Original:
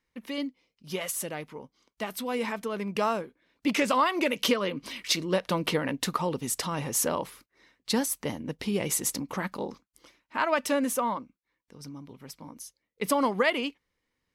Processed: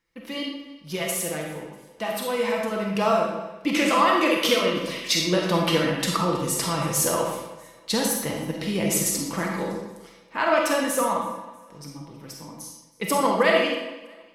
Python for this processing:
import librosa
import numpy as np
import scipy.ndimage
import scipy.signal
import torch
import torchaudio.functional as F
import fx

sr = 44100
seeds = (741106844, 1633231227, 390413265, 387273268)

p1 = x + 0.44 * np.pad(x, (int(6.0 * sr / 1000.0), 0))[:len(x)]
p2 = p1 + fx.echo_feedback(p1, sr, ms=321, feedback_pct=36, wet_db=-22, dry=0)
p3 = fx.rev_freeverb(p2, sr, rt60_s=0.93, hf_ratio=0.85, predelay_ms=5, drr_db=-1.0)
y = F.gain(torch.from_numpy(p3), 1.5).numpy()